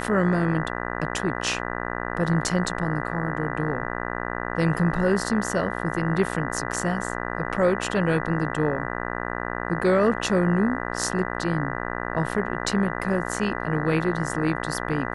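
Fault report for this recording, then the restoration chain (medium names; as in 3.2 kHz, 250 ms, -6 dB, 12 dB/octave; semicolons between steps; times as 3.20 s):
buzz 60 Hz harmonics 33 -30 dBFS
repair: de-hum 60 Hz, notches 33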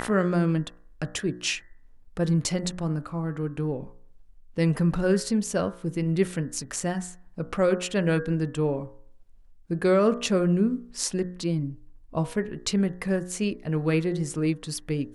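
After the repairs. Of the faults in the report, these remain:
nothing left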